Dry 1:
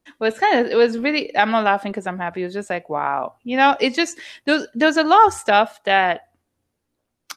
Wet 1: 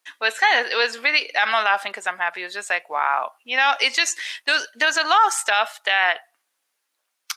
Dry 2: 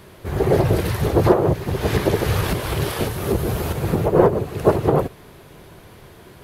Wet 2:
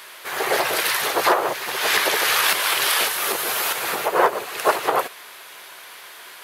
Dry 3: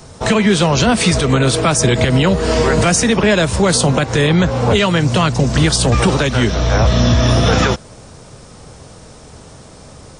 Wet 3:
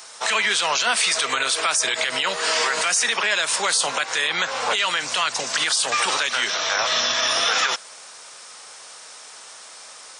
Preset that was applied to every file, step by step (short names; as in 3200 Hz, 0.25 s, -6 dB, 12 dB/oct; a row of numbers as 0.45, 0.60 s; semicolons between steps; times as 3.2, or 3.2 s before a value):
HPF 1300 Hz 12 dB/oct; limiter -15 dBFS; match loudness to -20 LUFS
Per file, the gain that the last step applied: +8.0, +11.5, +4.0 dB